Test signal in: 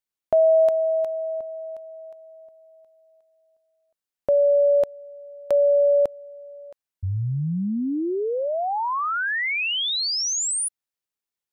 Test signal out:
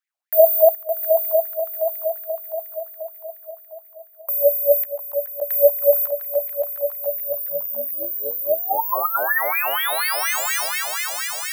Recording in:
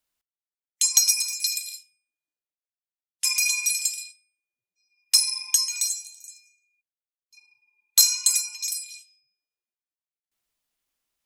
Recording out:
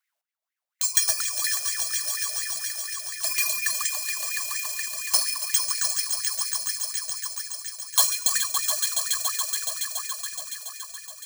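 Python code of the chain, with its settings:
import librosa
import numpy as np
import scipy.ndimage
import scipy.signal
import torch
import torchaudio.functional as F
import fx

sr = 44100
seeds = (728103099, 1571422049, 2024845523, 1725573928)

y = fx.echo_swell(x, sr, ms=141, loudest=5, wet_db=-9.0)
y = (np.kron(y[::3], np.eye(3)[0]) * 3)[:len(y)]
y = fx.filter_lfo_highpass(y, sr, shape='sine', hz=4.2, low_hz=590.0, high_hz=2100.0, q=7.1)
y = y * 10.0 ** (-8.0 / 20.0)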